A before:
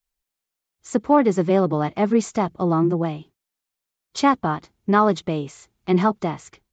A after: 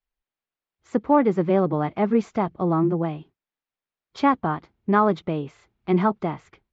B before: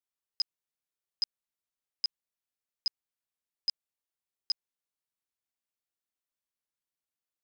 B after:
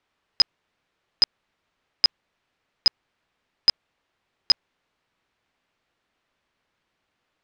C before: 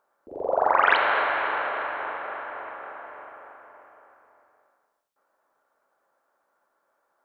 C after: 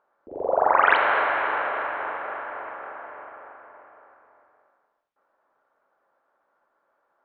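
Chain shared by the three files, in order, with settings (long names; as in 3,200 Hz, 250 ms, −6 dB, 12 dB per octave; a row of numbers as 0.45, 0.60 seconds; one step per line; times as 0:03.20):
low-pass filter 2,800 Hz 12 dB per octave
loudness normalisation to −23 LKFS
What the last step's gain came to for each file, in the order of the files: −2.0, +24.0, +1.5 decibels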